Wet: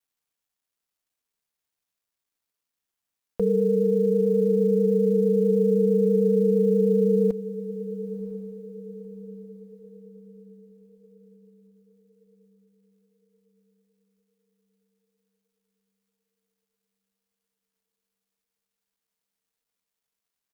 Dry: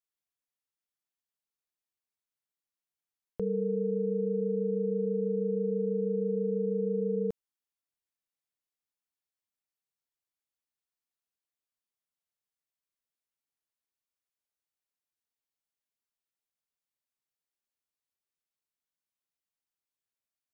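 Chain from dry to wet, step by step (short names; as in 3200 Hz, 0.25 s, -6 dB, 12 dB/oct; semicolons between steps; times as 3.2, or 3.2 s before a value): bell 88 Hz -11.5 dB 0.35 oct; comb 4.3 ms, depth 50%; in parallel at -2 dB: limiter -27 dBFS, peak gain reduction 7.5 dB; on the sum: vibrato 9.2 Hz 26 cents; companded quantiser 8-bit; on a send: diffused feedback echo 1.003 s, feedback 46%, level -14 dB; on the sum: gain +3 dB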